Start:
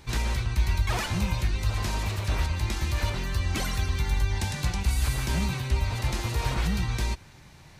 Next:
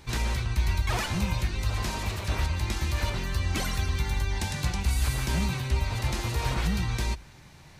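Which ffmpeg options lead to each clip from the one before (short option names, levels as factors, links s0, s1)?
-af "bandreject=f=50:t=h:w=6,bandreject=f=100:t=h:w=6"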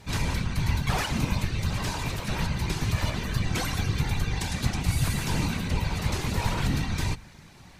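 -af "afftfilt=real='hypot(re,im)*cos(2*PI*random(0))':imag='hypot(re,im)*sin(2*PI*random(1))':win_size=512:overlap=0.75,volume=2.24"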